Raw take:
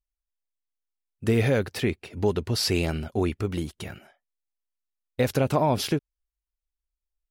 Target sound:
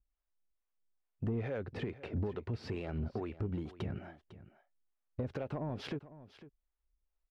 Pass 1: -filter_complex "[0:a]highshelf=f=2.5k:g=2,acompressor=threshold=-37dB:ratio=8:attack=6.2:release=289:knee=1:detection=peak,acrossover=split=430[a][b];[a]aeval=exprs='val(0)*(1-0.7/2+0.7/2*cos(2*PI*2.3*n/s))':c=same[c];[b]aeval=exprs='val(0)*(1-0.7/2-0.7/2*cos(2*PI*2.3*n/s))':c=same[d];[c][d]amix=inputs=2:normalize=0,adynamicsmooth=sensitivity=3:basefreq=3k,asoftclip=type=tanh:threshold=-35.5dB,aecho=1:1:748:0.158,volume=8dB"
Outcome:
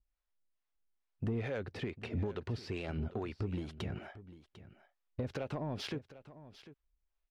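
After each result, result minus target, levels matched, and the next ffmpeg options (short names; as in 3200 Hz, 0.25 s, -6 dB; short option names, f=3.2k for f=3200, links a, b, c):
echo 0.246 s late; 4000 Hz band +4.5 dB
-filter_complex "[0:a]highshelf=f=2.5k:g=2,acompressor=threshold=-37dB:ratio=8:attack=6.2:release=289:knee=1:detection=peak,acrossover=split=430[a][b];[a]aeval=exprs='val(0)*(1-0.7/2+0.7/2*cos(2*PI*2.3*n/s))':c=same[c];[b]aeval=exprs='val(0)*(1-0.7/2-0.7/2*cos(2*PI*2.3*n/s))':c=same[d];[c][d]amix=inputs=2:normalize=0,adynamicsmooth=sensitivity=3:basefreq=3k,asoftclip=type=tanh:threshold=-35.5dB,aecho=1:1:502:0.158,volume=8dB"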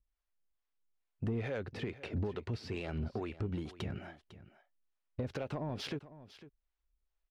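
4000 Hz band +4.5 dB
-filter_complex "[0:a]highshelf=f=2.5k:g=-9.5,acompressor=threshold=-37dB:ratio=8:attack=6.2:release=289:knee=1:detection=peak,acrossover=split=430[a][b];[a]aeval=exprs='val(0)*(1-0.7/2+0.7/2*cos(2*PI*2.3*n/s))':c=same[c];[b]aeval=exprs='val(0)*(1-0.7/2-0.7/2*cos(2*PI*2.3*n/s))':c=same[d];[c][d]amix=inputs=2:normalize=0,adynamicsmooth=sensitivity=3:basefreq=3k,asoftclip=type=tanh:threshold=-35.5dB,aecho=1:1:502:0.158,volume=8dB"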